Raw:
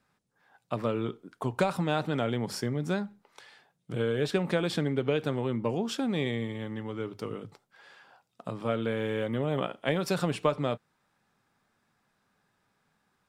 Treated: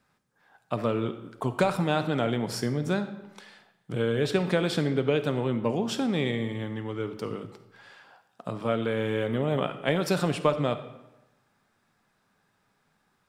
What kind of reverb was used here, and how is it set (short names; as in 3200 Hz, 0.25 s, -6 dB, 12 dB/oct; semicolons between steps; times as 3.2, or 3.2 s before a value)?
digital reverb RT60 1 s, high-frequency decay 0.75×, pre-delay 10 ms, DRR 10.5 dB; gain +2.5 dB